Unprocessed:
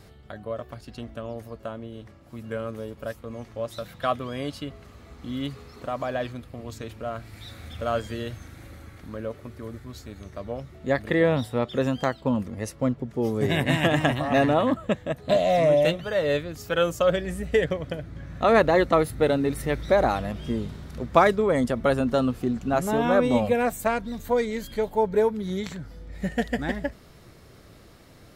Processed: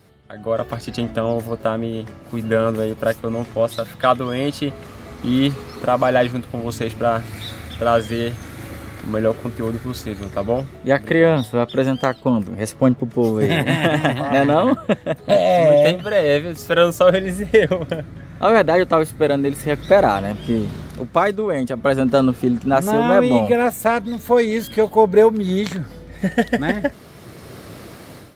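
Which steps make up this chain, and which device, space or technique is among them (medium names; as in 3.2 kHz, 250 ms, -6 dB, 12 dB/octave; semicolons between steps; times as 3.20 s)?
video call (high-pass 100 Hz 12 dB/octave; level rider gain up to 16.5 dB; trim -1 dB; Opus 32 kbps 48 kHz)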